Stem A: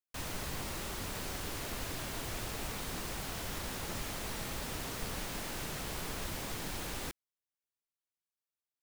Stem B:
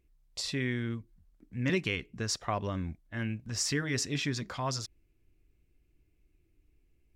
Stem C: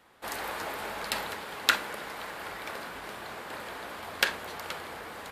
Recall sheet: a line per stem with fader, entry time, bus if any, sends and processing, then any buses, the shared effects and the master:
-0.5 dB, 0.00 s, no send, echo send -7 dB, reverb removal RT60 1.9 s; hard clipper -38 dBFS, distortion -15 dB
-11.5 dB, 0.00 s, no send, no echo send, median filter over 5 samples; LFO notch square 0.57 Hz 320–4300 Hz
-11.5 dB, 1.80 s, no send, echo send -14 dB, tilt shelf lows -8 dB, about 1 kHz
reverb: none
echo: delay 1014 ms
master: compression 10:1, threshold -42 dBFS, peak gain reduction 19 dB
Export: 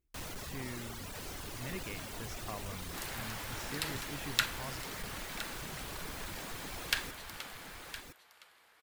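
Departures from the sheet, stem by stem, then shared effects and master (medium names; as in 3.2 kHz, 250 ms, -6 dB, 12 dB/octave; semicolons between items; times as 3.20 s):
stem C: entry 1.80 s -> 2.70 s; master: missing compression 10:1, threshold -42 dBFS, peak gain reduction 19 dB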